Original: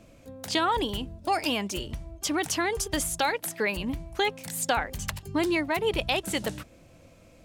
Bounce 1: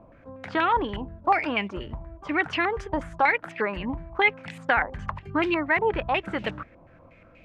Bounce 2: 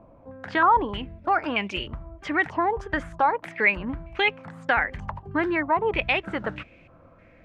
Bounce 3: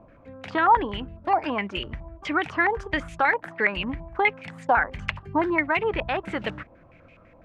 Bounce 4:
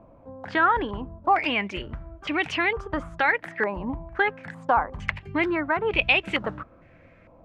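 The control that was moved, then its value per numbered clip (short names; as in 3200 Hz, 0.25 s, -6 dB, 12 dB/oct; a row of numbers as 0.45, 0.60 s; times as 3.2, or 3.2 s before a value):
stepped low-pass, rate: 8.3, 3.2, 12, 2.2 Hz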